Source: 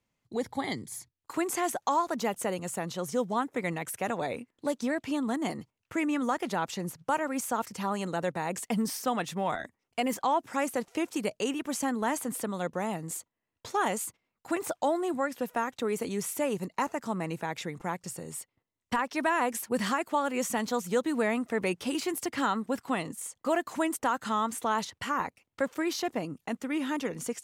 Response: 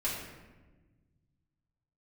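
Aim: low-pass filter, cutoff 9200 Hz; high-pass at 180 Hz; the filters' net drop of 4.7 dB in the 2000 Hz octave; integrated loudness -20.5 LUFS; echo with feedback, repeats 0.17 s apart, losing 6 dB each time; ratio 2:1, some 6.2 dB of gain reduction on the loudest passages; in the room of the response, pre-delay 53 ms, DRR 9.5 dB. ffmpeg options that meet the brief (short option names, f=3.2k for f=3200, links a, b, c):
-filter_complex "[0:a]highpass=180,lowpass=9.2k,equalizer=f=2k:t=o:g=-6,acompressor=threshold=-35dB:ratio=2,aecho=1:1:170|340|510|680|850|1020:0.501|0.251|0.125|0.0626|0.0313|0.0157,asplit=2[a][b];[1:a]atrim=start_sample=2205,adelay=53[c];[b][c]afir=irnorm=-1:irlink=0,volume=-15dB[d];[a][d]amix=inputs=2:normalize=0,volume=15dB"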